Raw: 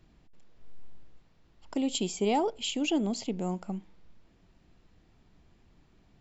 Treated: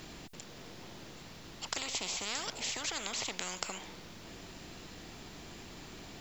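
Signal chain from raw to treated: high shelf 3600 Hz +11.5 dB; spectral compressor 10:1; gain -1.5 dB

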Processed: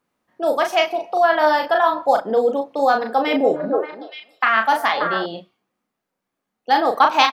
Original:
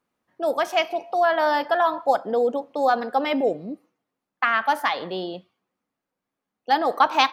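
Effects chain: doubler 36 ms -5 dB; 2.98–5.26 delay with a stepping band-pass 0.29 s, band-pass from 470 Hz, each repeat 1.4 oct, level -2 dB; gain +3 dB

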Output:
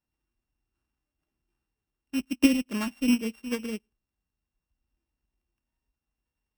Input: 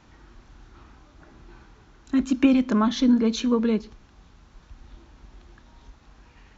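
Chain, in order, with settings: sample sorter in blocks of 16 samples; upward expander 2.5:1, over -36 dBFS

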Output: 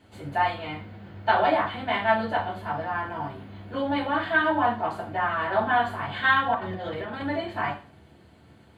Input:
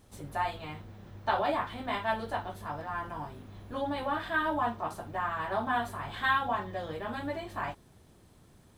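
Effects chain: 6.54–7.22 negative-ratio compressor -39 dBFS, ratio -0.5; reverb RT60 0.40 s, pre-delay 3 ms, DRR -1 dB; gain -6 dB

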